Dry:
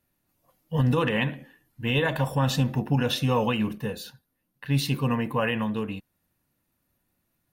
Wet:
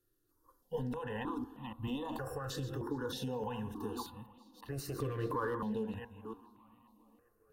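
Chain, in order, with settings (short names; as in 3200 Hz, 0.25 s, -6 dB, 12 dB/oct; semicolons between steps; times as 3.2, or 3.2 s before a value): reverse delay 0.288 s, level -12.5 dB; high shelf 12000 Hz -3 dB; fixed phaser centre 610 Hz, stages 6; de-hum 77.25 Hz, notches 21; limiter -26.5 dBFS, peak gain reduction 9.5 dB; compressor, threshold -35 dBFS, peak gain reduction 5.5 dB; 4.72–5.55 sample leveller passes 1; high shelf 2800 Hz -8.5 dB; on a send: tape echo 0.413 s, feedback 65%, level -20 dB, low-pass 4800 Hz; on the sum: step phaser 3.2 Hz 240–1600 Hz; gain +4.5 dB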